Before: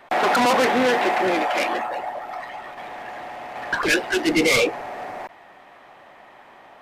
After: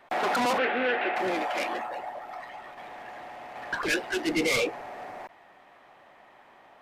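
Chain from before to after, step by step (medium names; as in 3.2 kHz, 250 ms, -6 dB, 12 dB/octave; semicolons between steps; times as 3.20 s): 0.58–1.16 s: cabinet simulation 280–3300 Hz, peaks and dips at 1 kHz -8 dB, 1.5 kHz +6 dB, 2.6 kHz +5 dB; trim -7.5 dB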